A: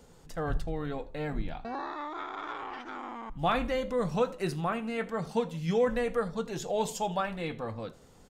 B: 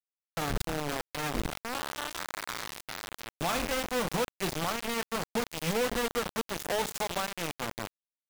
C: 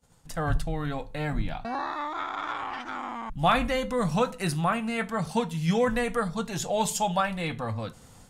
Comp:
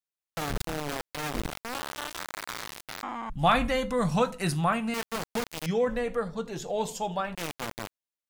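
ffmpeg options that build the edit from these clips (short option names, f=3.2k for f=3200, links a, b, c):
-filter_complex "[1:a]asplit=3[a][b][c];[a]atrim=end=3.032[d];[2:a]atrim=start=3.028:end=4.942[e];[b]atrim=start=4.938:end=5.662[f];[0:a]atrim=start=5.658:end=7.352[g];[c]atrim=start=7.348[h];[d][e]acrossfade=d=0.004:c1=hsin:c2=hsin[i];[i][f]acrossfade=d=0.004:c1=hsin:c2=hsin[j];[j][g]acrossfade=d=0.004:c1=hsin:c2=hsin[k];[k][h]acrossfade=d=0.004:c1=hsin:c2=hsin"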